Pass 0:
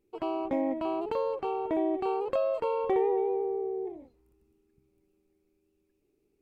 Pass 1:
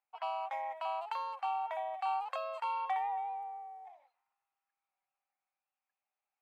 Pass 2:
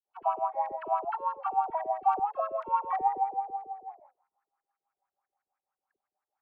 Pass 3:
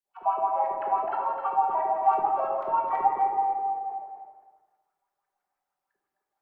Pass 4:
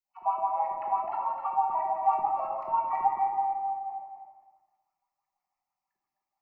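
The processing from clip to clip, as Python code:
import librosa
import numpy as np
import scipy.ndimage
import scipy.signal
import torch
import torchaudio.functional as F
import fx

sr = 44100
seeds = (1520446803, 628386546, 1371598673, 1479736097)

y1 = fx.env_lowpass(x, sr, base_hz=1600.0, full_db=-29.0)
y1 = scipy.signal.sosfilt(scipy.signal.ellip(4, 1.0, 50, 740.0, 'highpass', fs=sr, output='sos'), y1)
y1 = y1 * librosa.db_to_amplitude(1.0)
y2 = fx.filter_lfo_lowpass(y1, sr, shape='saw_up', hz=6.1, low_hz=370.0, high_hz=1800.0, q=5.3)
y2 = fx.dispersion(y2, sr, late='lows', ms=65.0, hz=760.0)
y3 = fx.echo_feedback(y2, sr, ms=258, feedback_pct=22, wet_db=-7.0)
y3 = fx.room_shoebox(y3, sr, seeds[0], volume_m3=390.0, walls='mixed', distance_m=1.2)
y4 = fx.fixed_phaser(y3, sr, hz=2300.0, stages=8)
y4 = y4 * librosa.db_to_amplitude(-1.5)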